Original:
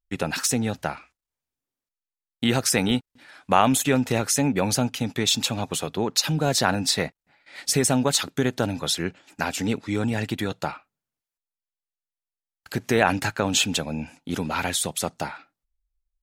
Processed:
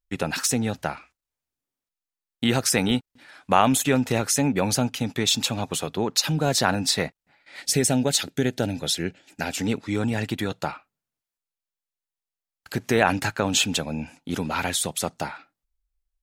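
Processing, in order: 7.62–9.51 bell 1100 Hz -14.5 dB 0.43 oct

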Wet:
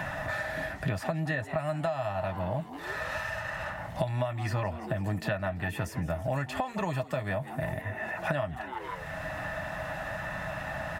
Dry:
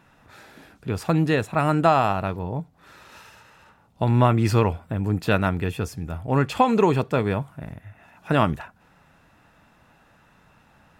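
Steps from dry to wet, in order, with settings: bell 390 Hz -13.5 dB 0.81 oct; notch comb 230 Hz; small resonant body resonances 640/1800 Hz, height 16 dB, ringing for 40 ms; frequency-shifting echo 0.164 s, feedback 45%, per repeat +120 Hz, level -20 dB; compressor 2.5:1, threshold -32 dBFS, peak gain reduction 16 dB; 5.64–7.82 high shelf 5800 Hz +8 dB; three-band squash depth 100%

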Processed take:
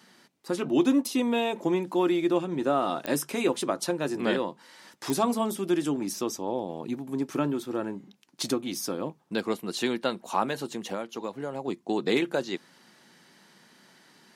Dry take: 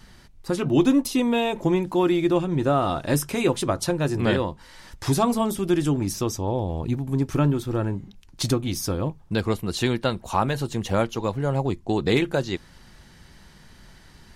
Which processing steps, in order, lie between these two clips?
HPF 200 Hz 24 dB/oct; 10.65–11.68 compressor 6:1, threshold -26 dBFS, peak gain reduction 9.5 dB; pops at 3.06/5.1, -12 dBFS; gain -3.5 dB

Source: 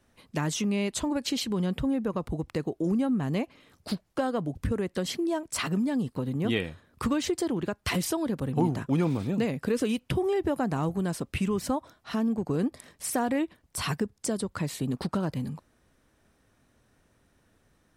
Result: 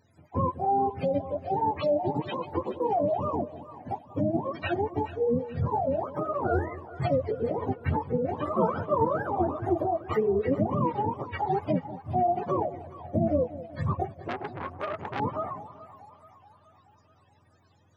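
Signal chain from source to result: spectrum mirrored in octaves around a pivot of 400 Hz; split-band echo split 700 Hz, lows 0.192 s, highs 0.426 s, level -15 dB; 14.28–15.2 core saturation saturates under 1700 Hz; gain +3.5 dB

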